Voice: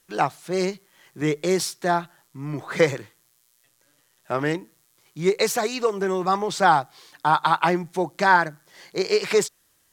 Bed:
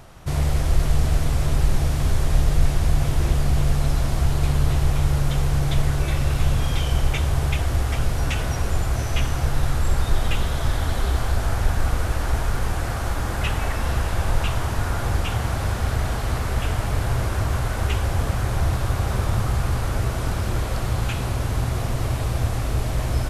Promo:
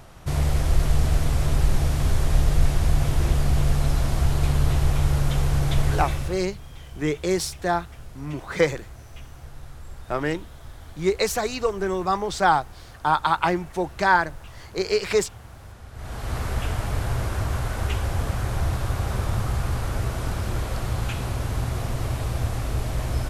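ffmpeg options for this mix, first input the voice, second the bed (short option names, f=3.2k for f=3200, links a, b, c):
-filter_complex "[0:a]adelay=5800,volume=-1.5dB[a];[1:a]volume=15.5dB,afade=t=out:st=5.95:d=0.49:silence=0.11885,afade=t=in:st=15.93:d=0.48:silence=0.149624[b];[a][b]amix=inputs=2:normalize=0"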